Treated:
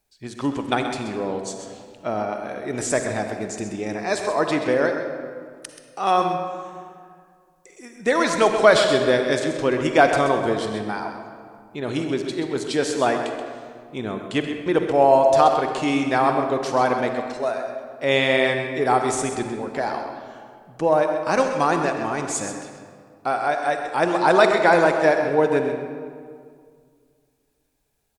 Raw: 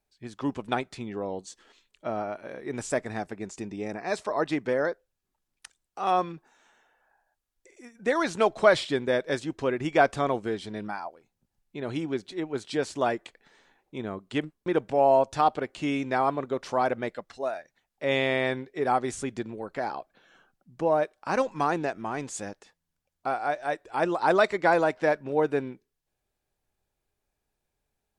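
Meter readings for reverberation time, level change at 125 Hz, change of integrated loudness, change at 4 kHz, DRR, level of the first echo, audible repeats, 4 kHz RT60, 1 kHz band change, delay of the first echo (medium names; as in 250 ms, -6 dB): 2.1 s, +6.0 dB, +6.5 dB, +9.0 dB, 4.5 dB, -10.0 dB, 1, 1.3 s, +6.5 dB, 130 ms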